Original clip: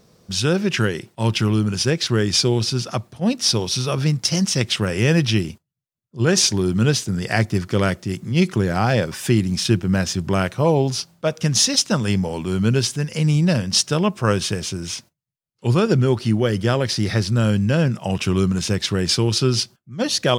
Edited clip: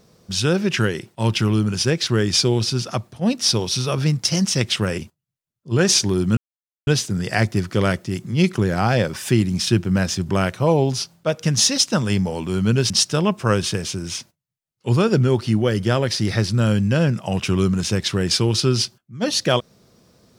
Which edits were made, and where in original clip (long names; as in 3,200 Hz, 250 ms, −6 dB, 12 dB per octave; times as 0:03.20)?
0:04.98–0:05.46: remove
0:06.85: splice in silence 0.50 s
0:12.88–0:13.68: remove